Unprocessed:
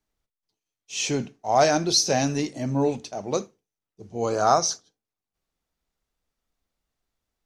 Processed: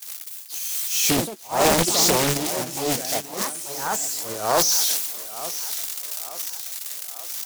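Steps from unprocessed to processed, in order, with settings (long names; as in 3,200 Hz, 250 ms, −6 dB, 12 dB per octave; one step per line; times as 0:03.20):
spike at every zero crossing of −13.5 dBFS
noise gate −21 dBFS, range −34 dB
transient designer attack −12 dB, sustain +11 dB
delay with pitch and tempo change per echo 290 ms, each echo +4 semitones, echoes 2, each echo −6 dB
feedback echo with a high-pass in the loop 883 ms, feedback 55%, high-pass 290 Hz, level −14 dB
highs frequency-modulated by the lows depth 1 ms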